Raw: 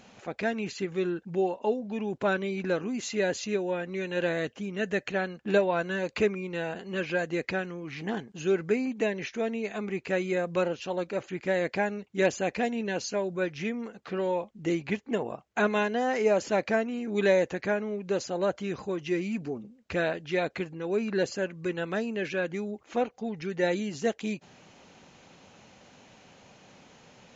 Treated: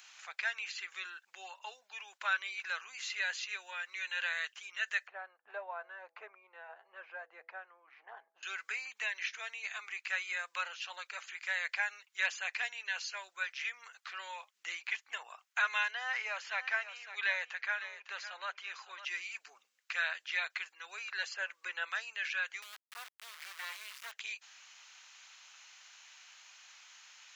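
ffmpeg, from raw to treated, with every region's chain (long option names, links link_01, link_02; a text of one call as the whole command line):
ffmpeg -i in.wav -filter_complex "[0:a]asettb=1/sr,asplit=3[link_01][link_02][link_03];[link_01]atrim=end=5.074[link_04];[link_02]atrim=start=5.07:end=8.43,asetpts=PTS-STARTPTS,afade=type=in:duration=0.004:curve=qsin,afade=type=out:start_time=3.356:duration=0.004:curve=qsin,lowpass=frequency=690:width_type=q:width=1.7,bandreject=frequency=165:width_type=h:width=4,bandreject=frequency=330:width_type=h:width=4,bandreject=frequency=495:width_type=h:width=4,bandreject=frequency=660:width_type=h:width=4,bandreject=frequency=825:width_type=h:width=4[link_05];[link_03]atrim=start=8.426[link_06];[link_04][link_05]acrossfade=duration=0.004:curve1=hsin:curve2=qsin[link_07];[link_07][link_06]acrossfade=duration=0.004:curve1=qsin:curve2=hsin,asettb=1/sr,asplit=3[link_08][link_09][link_10];[link_08]atrim=end=15.914[link_11];[link_09]atrim=start=15.91:end=19.05,asetpts=PTS-STARTPTS,afade=type=in:duration=0.004:curve=qsin,afade=type=out:start_time=3.136:duration=0.004:curve=qsin,highpass=280,lowpass=3700,aecho=1:1:554:0.237,atrim=end_sample=138474[link_12];[link_10]atrim=start=19.046[link_13];[link_11][link_12]acrossfade=duration=0.004:curve1=hsin:curve2=qsin[link_14];[link_14][link_13]acrossfade=duration=0.004:curve1=qsin:curve2=hsin,asettb=1/sr,asplit=3[link_15][link_16][link_17];[link_15]atrim=end=21.344[link_18];[link_16]atrim=start=21.34:end=21.89,asetpts=PTS-STARTPTS,afade=type=in:duration=0.004:curve=qsin,afade=type=out:start_time=0.546:duration=0.004:curve=qsin,acrossover=split=3700[link_19][link_20];[link_20]acompressor=threshold=-59dB:ratio=4:attack=1:release=60[link_21];[link_19][link_21]amix=inputs=2:normalize=0,equalizer=frequency=540:width=0.95:gain=8[link_22];[link_17]atrim=start=21.886[link_23];[link_18][link_22]acrossfade=duration=0.004:curve1=hsin:curve2=qsin[link_24];[link_24][link_23]acrossfade=duration=0.004:curve1=qsin:curve2=hsin,asettb=1/sr,asplit=3[link_25][link_26][link_27];[link_25]atrim=end=22.624[link_28];[link_26]atrim=start=22.62:end=24.12,asetpts=PTS-STARTPTS,afade=type=in:duration=0.004:curve=qsin,afade=type=out:start_time=1.496:duration=0.004:curve=qsin,highshelf=frequency=4300:gain=-8.5,acrossover=split=300|3000[link_29][link_30][link_31];[link_30]acompressor=threshold=-33dB:ratio=2.5:attack=3.2:release=140:knee=2.83:detection=peak[link_32];[link_29][link_32][link_31]amix=inputs=3:normalize=0,acrusher=bits=4:dc=4:mix=0:aa=0.000001[link_33];[link_27]atrim=start=24.116[link_34];[link_28][link_33]acrossfade=duration=0.004:curve1=hsin:curve2=qsin[link_35];[link_35][link_34]acrossfade=duration=0.004:curve1=qsin:curve2=hsin,highpass=frequency=1200:width=0.5412,highpass=frequency=1200:width=1.3066,acrossover=split=4100[link_36][link_37];[link_37]acompressor=threshold=-57dB:ratio=4:attack=1:release=60[link_38];[link_36][link_38]amix=inputs=2:normalize=0,highshelf=frequency=4200:gain=7" out.wav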